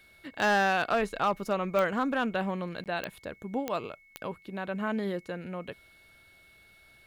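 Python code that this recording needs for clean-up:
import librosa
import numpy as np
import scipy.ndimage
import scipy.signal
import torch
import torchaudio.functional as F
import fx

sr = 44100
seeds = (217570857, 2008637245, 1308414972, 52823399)

y = fx.fix_declip(x, sr, threshold_db=-19.0)
y = fx.fix_declick_ar(y, sr, threshold=10.0)
y = fx.notch(y, sr, hz=2200.0, q=30.0)
y = fx.fix_interpolate(y, sr, at_s=(2.84,), length_ms=18.0)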